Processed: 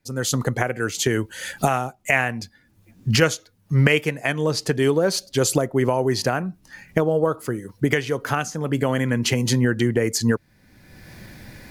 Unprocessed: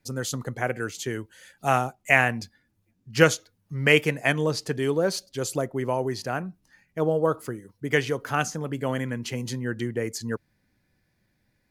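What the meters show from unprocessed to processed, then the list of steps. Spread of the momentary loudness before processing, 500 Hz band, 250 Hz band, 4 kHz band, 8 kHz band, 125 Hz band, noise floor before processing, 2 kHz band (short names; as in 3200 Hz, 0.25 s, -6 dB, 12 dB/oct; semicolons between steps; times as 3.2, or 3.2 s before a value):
14 LU, +3.5 dB, +6.5 dB, +5.5 dB, +7.5 dB, +7.5 dB, -71 dBFS, +1.0 dB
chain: recorder AGC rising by 29 dB/s; gain -1 dB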